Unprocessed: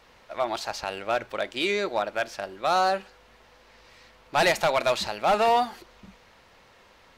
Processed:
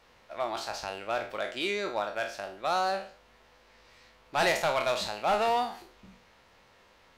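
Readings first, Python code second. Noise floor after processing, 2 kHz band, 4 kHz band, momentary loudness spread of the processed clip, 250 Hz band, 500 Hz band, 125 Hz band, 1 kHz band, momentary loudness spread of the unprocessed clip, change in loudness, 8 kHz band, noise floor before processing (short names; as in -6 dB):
-61 dBFS, -4.0 dB, -4.0 dB, 10 LU, -5.0 dB, -5.0 dB, -5.0 dB, -5.0 dB, 10 LU, -4.5 dB, -3.5 dB, -57 dBFS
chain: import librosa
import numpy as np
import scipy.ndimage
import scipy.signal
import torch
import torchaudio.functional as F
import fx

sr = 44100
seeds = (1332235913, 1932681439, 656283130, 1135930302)

y = fx.spec_trails(x, sr, decay_s=0.43)
y = F.gain(torch.from_numpy(y), -6.0).numpy()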